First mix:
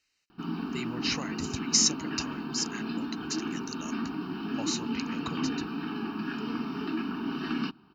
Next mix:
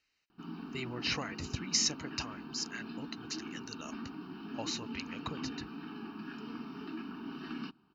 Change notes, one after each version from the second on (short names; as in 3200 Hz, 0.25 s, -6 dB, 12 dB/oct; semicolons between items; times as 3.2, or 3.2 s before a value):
speech: add air absorption 110 m; background -10.0 dB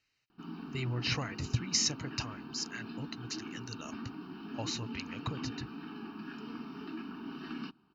speech: add bell 120 Hz +12.5 dB 0.57 oct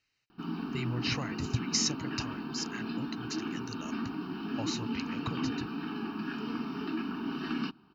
background +7.5 dB